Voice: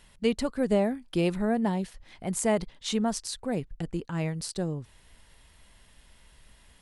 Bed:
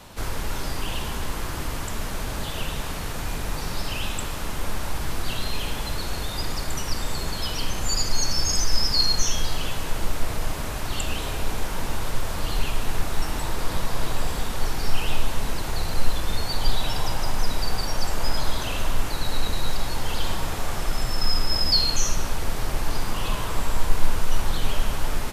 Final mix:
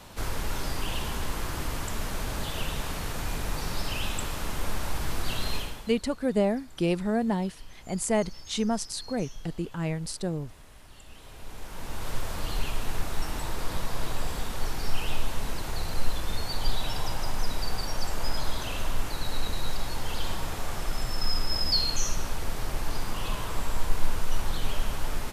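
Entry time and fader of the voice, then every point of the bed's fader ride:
5.65 s, 0.0 dB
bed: 5.56 s -2.5 dB
6.03 s -23.5 dB
11.04 s -23.5 dB
12.12 s -5 dB

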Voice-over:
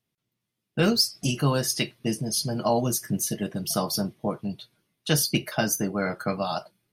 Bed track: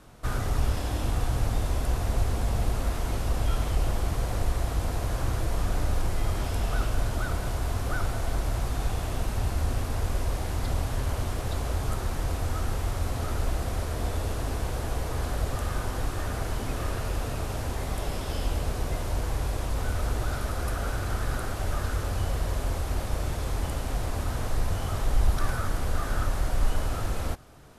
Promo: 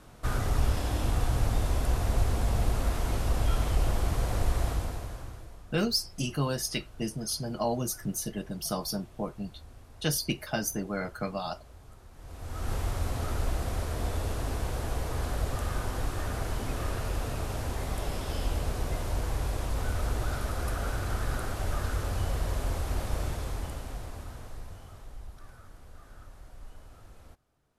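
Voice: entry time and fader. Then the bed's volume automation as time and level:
4.95 s, -6.0 dB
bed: 4.68 s -0.5 dB
5.64 s -22.5 dB
12.11 s -22.5 dB
12.72 s -2 dB
23.22 s -2 dB
25.33 s -22.5 dB

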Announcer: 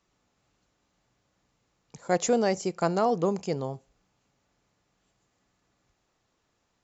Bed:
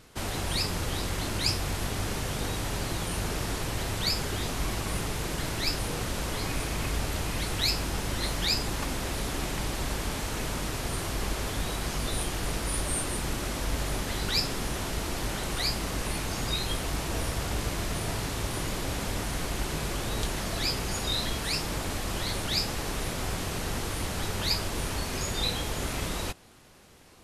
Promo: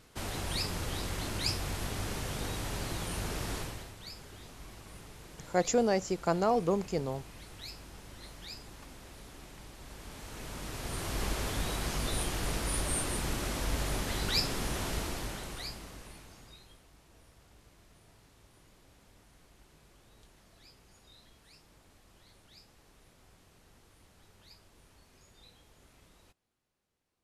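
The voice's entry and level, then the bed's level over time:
3.45 s, -3.0 dB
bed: 3.59 s -5 dB
3.95 s -18.5 dB
9.78 s -18.5 dB
11.21 s -2.5 dB
14.96 s -2.5 dB
16.89 s -29.5 dB

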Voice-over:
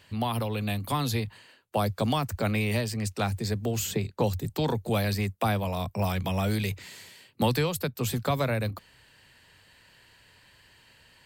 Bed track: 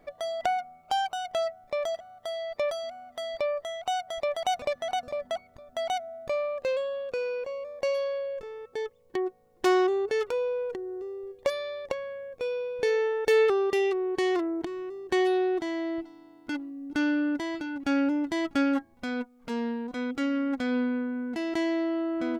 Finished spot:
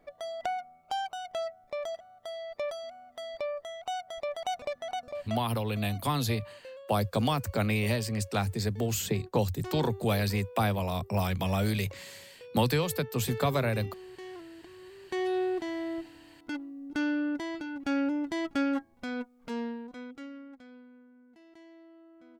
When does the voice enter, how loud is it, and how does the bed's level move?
5.15 s, -1.0 dB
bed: 5.43 s -5.5 dB
5.76 s -18 dB
14.61 s -18 dB
15.39 s -3.5 dB
19.6 s -3.5 dB
20.83 s -26 dB

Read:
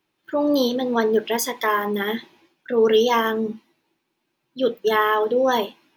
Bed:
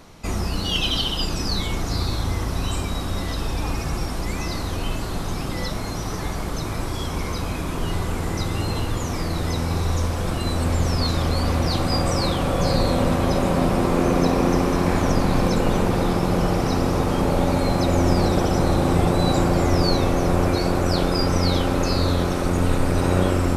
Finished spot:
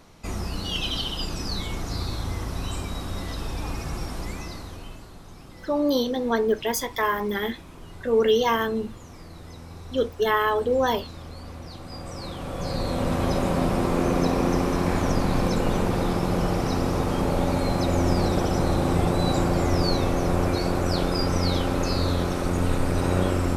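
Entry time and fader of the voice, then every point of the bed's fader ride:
5.35 s, -3.0 dB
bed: 4.23 s -5.5 dB
5.16 s -18 dB
11.8 s -18 dB
13.22 s -3.5 dB

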